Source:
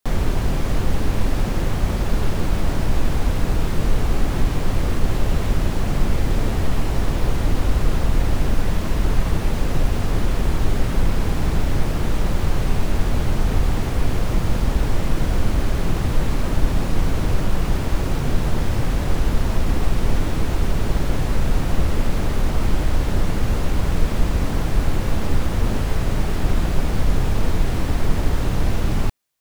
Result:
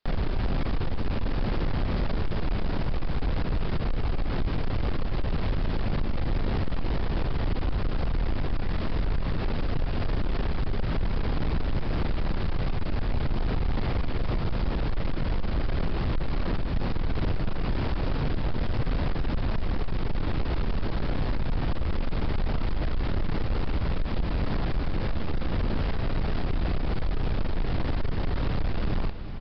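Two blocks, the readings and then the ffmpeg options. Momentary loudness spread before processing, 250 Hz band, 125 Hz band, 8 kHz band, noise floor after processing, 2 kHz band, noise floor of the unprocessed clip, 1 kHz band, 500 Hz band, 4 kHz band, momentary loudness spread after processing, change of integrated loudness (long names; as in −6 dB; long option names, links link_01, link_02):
1 LU, −6.5 dB, −7.0 dB, below −30 dB, −28 dBFS, −6.5 dB, −23 dBFS, −6.5 dB, −6.5 dB, −7.0 dB, 2 LU, −7.0 dB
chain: -af "acompressor=threshold=-16dB:ratio=6,aecho=1:1:370:0.211,aresample=11025,asoftclip=type=tanh:threshold=-20.5dB,aresample=44100"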